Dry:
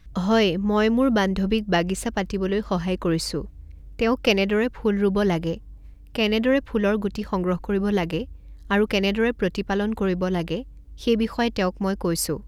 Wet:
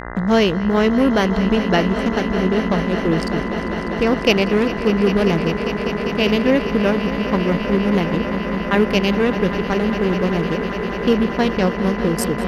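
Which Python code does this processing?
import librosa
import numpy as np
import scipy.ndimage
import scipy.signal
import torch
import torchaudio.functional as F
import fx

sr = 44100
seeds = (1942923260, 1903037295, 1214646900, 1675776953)

y = fx.wiener(x, sr, points=41)
y = fx.dmg_buzz(y, sr, base_hz=60.0, harmonics=34, level_db=-36.0, tilt_db=-1, odd_only=False)
y = fx.echo_swell(y, sr, ms=199, loudest=5, wet_db=-13.0)
y = y * librosa.db_to_amplitude(4.5)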